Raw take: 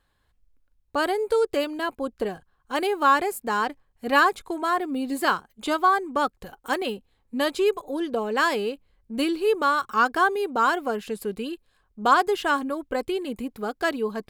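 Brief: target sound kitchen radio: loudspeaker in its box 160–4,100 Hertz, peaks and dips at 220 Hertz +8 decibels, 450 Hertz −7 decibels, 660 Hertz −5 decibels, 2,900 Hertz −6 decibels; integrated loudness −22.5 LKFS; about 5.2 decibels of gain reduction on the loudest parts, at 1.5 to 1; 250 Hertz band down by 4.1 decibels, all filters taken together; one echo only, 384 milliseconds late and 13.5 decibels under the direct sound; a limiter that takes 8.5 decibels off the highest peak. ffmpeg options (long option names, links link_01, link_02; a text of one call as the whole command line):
ffmpeg -i in.wav -af "equalizer=frequency=250:width_type=o:gain=-7,acompressor=threshold=-28dB:ratio=1.5,alimiter=limit=-20dB:level=0:latency=1,highpass=160,equalizer=frequency=220:width_type=q:width=4:gain=8,equalizer=frequency=450:width_type=q:width=4:gain=-7,equalizer=frequency=660:width_type=q:width=4:gain=-5,equalizer=frequency=2900:width_type=q:width=4:gain=-6,lowpass=frequency=4100:width=0.5412,lowpass=frequency=4100:width=1.3066,aecho=1:1:384:0.211,volume=10.5dB" out.wav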